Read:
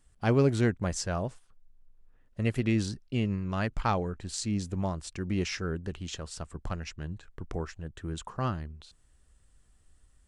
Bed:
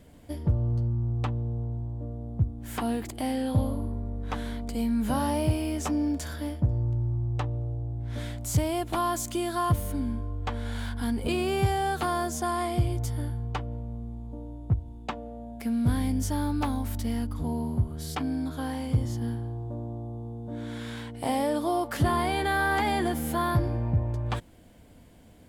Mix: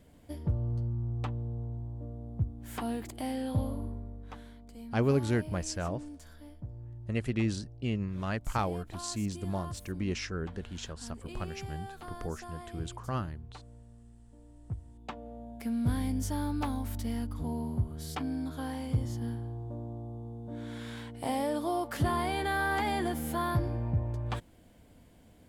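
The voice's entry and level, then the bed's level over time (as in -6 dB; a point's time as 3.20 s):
4.70 s, -3.0 dB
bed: 3.87 s -5.5 dB
4.55 s -17.5 dB
14.35 s -17.5 dB
15.32 s -4.5 dB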